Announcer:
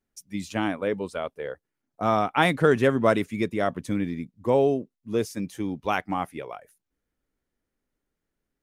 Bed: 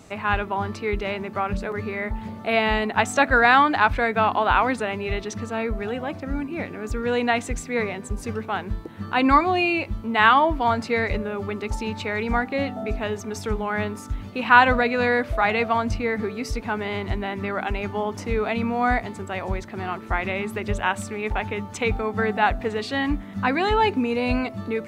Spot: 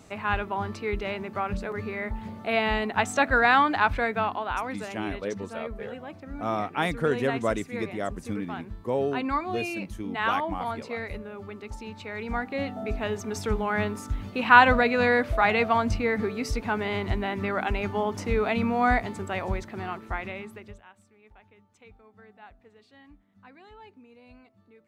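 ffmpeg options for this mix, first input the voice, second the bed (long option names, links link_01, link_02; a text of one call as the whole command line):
ffmpeg -i stem1.wav -i stem2.wav -filter_complex "[0:a]adelay=4400,volume=-6dB[link_01];[1:a]volume=6dB,afade=type=out:start_time=4.04:duration=0.41:silence=0.446684,afade=type=in:start_time=12:duration=1.38:silence=0.316228,afade=type=out:start_time=19.33:duration=1.51:silence=0.0375837[link_02];[link_01][link_02]amix=inputs=2:normalize=0" out.wav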